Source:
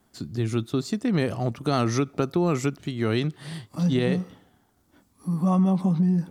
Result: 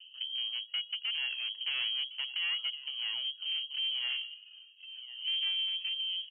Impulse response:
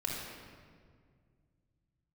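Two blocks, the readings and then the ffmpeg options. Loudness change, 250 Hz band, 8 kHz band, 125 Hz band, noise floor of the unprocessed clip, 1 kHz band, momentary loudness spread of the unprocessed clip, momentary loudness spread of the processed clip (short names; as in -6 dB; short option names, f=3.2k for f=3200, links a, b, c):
-7.5 dB, under -40 dB, under -40 dB, under -40 dB, -65 dBFS, -25.0 dB, 9 LU, 12 LU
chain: -af "acompressor=threshold=-44dB:ratio=2.5,lowshelf=f=760:t=q:w=3:g=11.5,aecho=1:1:1060:0.15,adynamicsmooth=sensitivity=5.5:basefreq=900,equalizer=f=2.4k:t=o:w=0.39:g=5.5,aphaser=in_gain=1:out_gain=1:delay=2.7:decay=0.55:speed=0.56:type=triangular,highpass=f=130:p=1,aeval=exprs='(tanh(22.4*val(0)+0.2)-tanh(0.2))/22.4':c=same,lowpass=f=2.8k:t=q:w=0.5098,lowpass=f=2.8k:t=q:w=0.6013,lowpass=f=2.8k:t=q:w=0.9,lowpass=f=2.8k:t=q:w=2.563,afreqshift=-3300,volume=-3.5dB"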